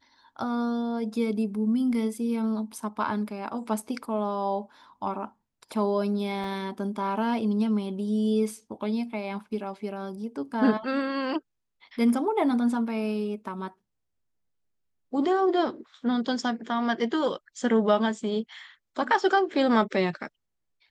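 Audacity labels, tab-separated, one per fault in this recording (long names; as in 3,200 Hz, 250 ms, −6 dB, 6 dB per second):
6.440000	6.440000	drop-out 2.2 ms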